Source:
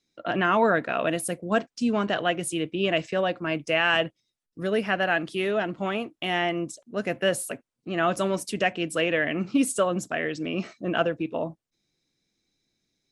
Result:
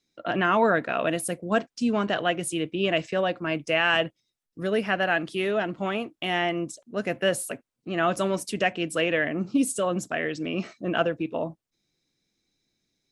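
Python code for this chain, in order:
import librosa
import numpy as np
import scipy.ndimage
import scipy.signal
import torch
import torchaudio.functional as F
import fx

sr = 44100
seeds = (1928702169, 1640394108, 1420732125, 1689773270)

y = fx.peak_eq(x, sr, hz=fx.line((9.27, 3400.0), (9.82, 1000.0)), db=-12.5, octaves=1.3, at=(9.27, 9.82), fade=0.02)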